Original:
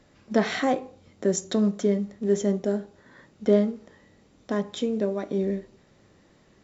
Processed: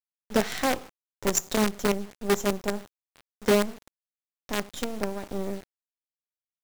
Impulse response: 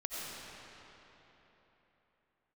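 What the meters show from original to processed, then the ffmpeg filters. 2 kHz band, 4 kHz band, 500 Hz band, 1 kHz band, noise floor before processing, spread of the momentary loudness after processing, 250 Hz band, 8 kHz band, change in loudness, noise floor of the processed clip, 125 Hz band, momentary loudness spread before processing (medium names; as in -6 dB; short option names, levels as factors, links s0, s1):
+3.5 dB, +4.5 dB, -3.0 dB, +2.0 dB, -60 dBFS, 10 LU, -4.5 dB, no reading, -2.0 dB, under -85 dBFS, -4.5 dB, 8 LU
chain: -af "aemphasis=mode=production:type=50kf,acrusher=bits=4:dc=4:mix=0:aa=0.000001,volume=0.75"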